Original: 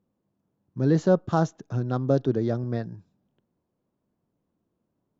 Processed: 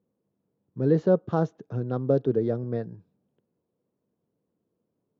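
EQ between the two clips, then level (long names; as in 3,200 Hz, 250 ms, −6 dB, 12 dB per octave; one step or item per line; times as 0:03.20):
band-pass filter 100–3,700 Hz
low-shelf EQ 350 Hz +4.5 dB
parametric band 460 Hz +9 dB 0.46 octaves
−5.5 dB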